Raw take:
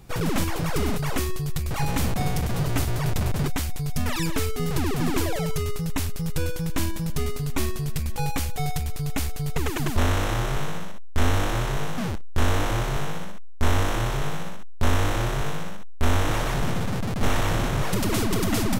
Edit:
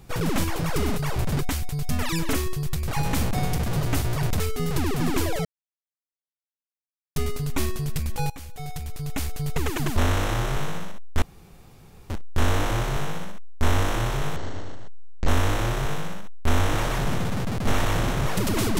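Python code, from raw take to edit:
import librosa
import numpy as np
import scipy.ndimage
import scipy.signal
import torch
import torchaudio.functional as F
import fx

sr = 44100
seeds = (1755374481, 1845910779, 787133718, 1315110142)

y = fx.edit(x, sr, fx.move(start_s=3.23, length_s=1.17, to_s=1.16),
    fx.silence(start_s=5.45, length_s=1.71),
    fx.fade_in_from(start_s=8.3, length_s=1.15, floor_db=-17.0),
    fx.room_tone_fill(start_s=11.22, length_s=0.88),
    fx.speed_span(start_s=14.36, length_s=0.48, speed=0.52), tone=tone)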